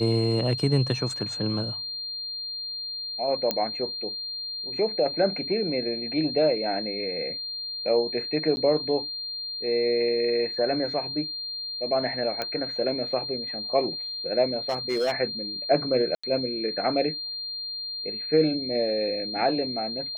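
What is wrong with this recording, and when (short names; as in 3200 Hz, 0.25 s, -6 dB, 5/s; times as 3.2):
tone 4200 Hz -31 dBFS
3.51 pop -9 dBFS
8.56–8.57 gap 10 ms
12.42 pop -14 dBFS
14.69–15.12 clipped -21 dBFS
16.15–16.23 gap 85 ms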